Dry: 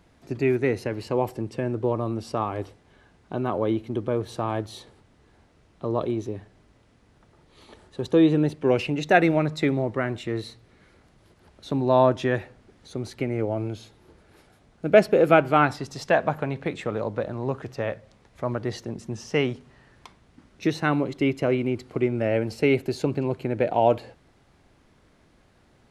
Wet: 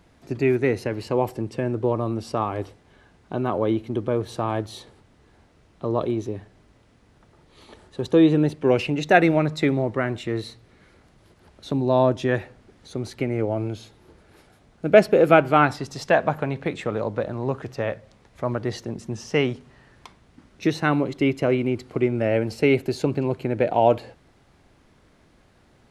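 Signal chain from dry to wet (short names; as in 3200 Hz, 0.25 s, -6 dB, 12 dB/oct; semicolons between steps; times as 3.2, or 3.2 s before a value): 11.72–12.29 bell 1400 Hz -6 dB 2 oct; gain +2 dB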